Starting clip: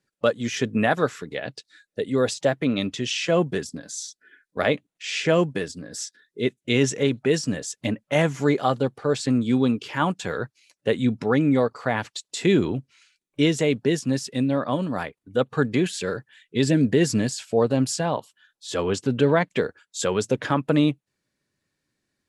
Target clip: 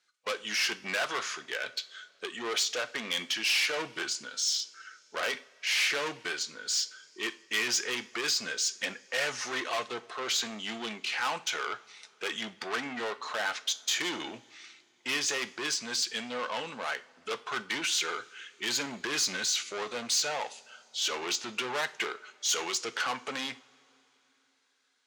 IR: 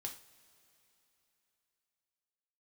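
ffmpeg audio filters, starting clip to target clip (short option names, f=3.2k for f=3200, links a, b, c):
-filter_complex "[0:a]lowpass=9.6k,asplit=2[a][b];[b]highpass=f=720:p=1,volume=25dB,asoftclip=type=tanh:threshold=-6.5dB[c];[a][c]amix=inputs=2:normalize=0,lowpass=f=1.9k:p=1,volume=-6dB,aderivative,asetrate=39205,aresample=44100,asplit=2[d][e];[1:a]atrim=start_sample=2205,lowpass=8.9k[f];[e][f]afir=irnorm=-1:irlink=0,volume=-1.5dB[g];[d][g]amix=inputs=2:normalize=0,volume=-2.5dB"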